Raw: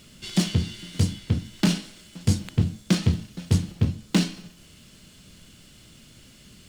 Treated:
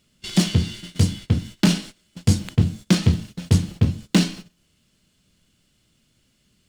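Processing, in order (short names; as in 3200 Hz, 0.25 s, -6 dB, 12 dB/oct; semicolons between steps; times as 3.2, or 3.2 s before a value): gate -39 dBFS, range -18 dB; gain +4 dB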